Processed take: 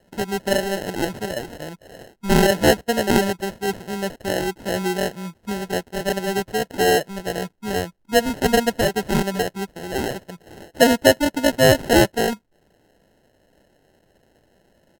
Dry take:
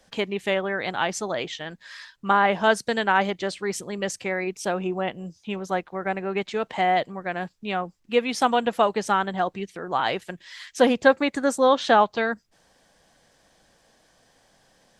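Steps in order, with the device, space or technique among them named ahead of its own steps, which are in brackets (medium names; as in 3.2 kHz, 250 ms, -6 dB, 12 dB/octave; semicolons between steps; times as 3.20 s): harmonic-percussive split percussive -9 dB; crushed at another speed (playback speed 1.25×; sample-and-hold 30×; playback speed 0.8×); trim +4.5 dB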